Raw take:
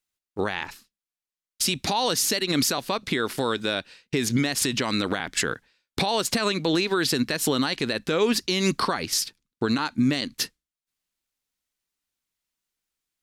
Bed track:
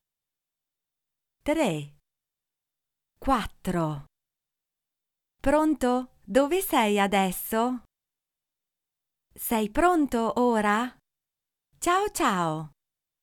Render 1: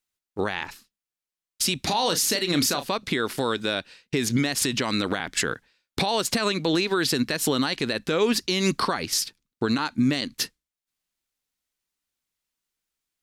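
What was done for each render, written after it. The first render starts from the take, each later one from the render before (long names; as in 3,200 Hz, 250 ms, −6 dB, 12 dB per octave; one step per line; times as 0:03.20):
0:01.80–0:02.88: double-tracking delay 34 ms −10 dB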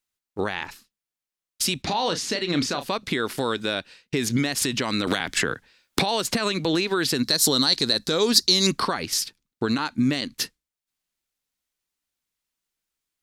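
0:01.82–0:02.81: high-frequency loss of the air 89 metres
0:05.07–0:06.65: multiband upward and downward compressor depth 100%
0:07.23–0:08.67: high shelf with overshoot 3,400 Hz +6.5 dB, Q 3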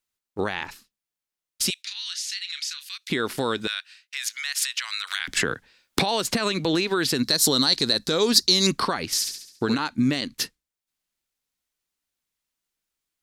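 0:01.70–0:03.10: Bessel high-pass filter 2,800 Hz, order 8
0:03.67–0:05.28: high-pass filter 1,400 Hz 24 dB per octave
0:09.13–0:09.75: flutter between parallel walls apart 11.9 metres, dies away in 0.67 s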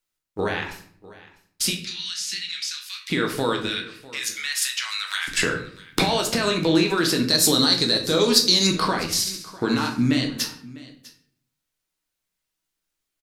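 single-tap delay 650 ms −20 dB
rectangular room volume 80 cubic metres, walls mixed, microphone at 0.58 metres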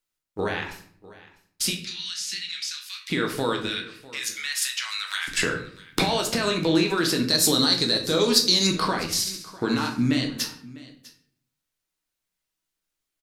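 level −2 dB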